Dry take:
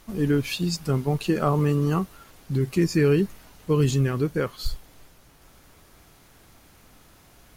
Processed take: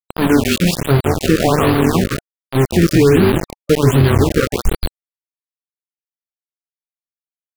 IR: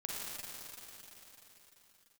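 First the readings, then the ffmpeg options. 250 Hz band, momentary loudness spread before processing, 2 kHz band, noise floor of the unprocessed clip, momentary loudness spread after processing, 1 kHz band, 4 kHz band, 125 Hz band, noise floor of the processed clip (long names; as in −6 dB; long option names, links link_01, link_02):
+9.5 dB, 9 LU, +12.5 dB, −55 dBFS, 10 LU, +11.5 dB, +11.0 dB, +8.0 dB, below −85 dBFS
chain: -filter_complex "[0:a]highshelf=frequency=5700:gain=-10.5,bandreject=frequency=50:width_type=h:width=6,bandreject=frequency=100:width_type=h:width=6,bandreject=frequency=150:width_type=h:width=6,bandreject=frequency=200:width_type=h:width=6,bandreject=frequency=250:width_type=h:width=6,bandreject=frequency=300:width_type=h:width=6,bandreject=frequency=350:width_type=h:width=6,acompressor=mode=upward:threshold=-44dB:ratio=2.5,flanger=delay=9.6:depth=1.3:regen=-60:speed=1:shape=triangular,asplit=5[link_01][link_02][link_03][link_04][link_05];[link_02]adelay=158,afreqshift=-43,volume=-5dB[link_06];[link_03]adelay=316,afreqshift=-86,volume=-14.1dB[link_07];[link_04]adelay=474,afreqshift=-129,volume=-23.2dB[link_08];[link_05]adelay=632,afreqshift=-172,volume=-32.4dB[link_09];[link_01][link_06][link_07][link_08][link_09]amix=inputs=5:normalize=0,aeval=exprs='val(0)*gte(abs(val(0)),0.0376)':channel_layout=same,alimiter=level_in=16.5dB:limit=-1dB:release=50:level=0:latency=1,afftfilt=real='re*(1-between(b*sr/1024,790*pow(7100/790,0.5+0.5*sin(2*PI*1.3*pts/sr))/1.41,790*pow(7100/790,0.5+0.5*sin(2*PI*1.3*pts/sr))*1.41))':imag='im*(1-between(b*sr/1024,790*pow(7100/790,0.5+0.5*sin(2*PI*1.3*pts/sr))/1.41,790*pow(7100/790,0.5+0.5*sin(2*PI*1.3*pts/sr))*1.41))':win_size=1024:overlap=0.75,volume=-1dB"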